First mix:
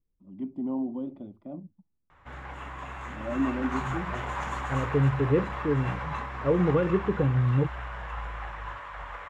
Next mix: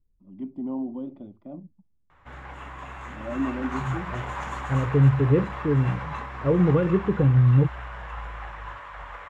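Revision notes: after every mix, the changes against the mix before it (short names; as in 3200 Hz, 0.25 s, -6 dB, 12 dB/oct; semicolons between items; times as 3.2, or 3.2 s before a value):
second voice: add low shelf 180 Hz +10.5 dB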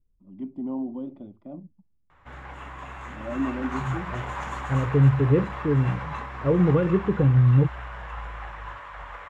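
none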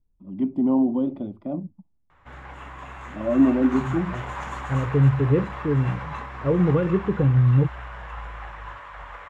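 first voice +10.5 dB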